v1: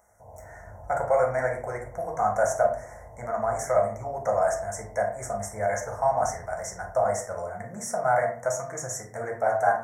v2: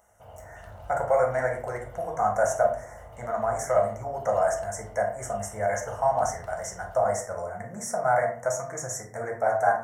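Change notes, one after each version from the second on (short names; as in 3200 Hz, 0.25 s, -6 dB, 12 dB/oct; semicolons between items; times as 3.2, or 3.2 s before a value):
background: remove brick-wall FIR low-pass 1100 Hz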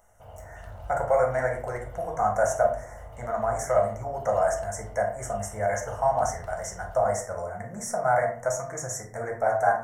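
master: remove HPF 89 Hz 6 dB/oct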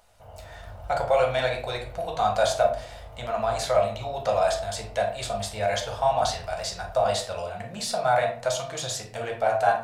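speech: remove Chebyshev band-stop 2100–5600 Hz, order 5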